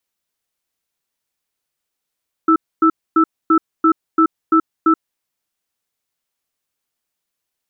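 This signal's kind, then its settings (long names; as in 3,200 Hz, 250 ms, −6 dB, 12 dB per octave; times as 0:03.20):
tone pair in a cadence 322 Hz, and 1,320 Hz, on 0.08 s, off 0.26 s, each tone −11.5 dBFS 2.63 s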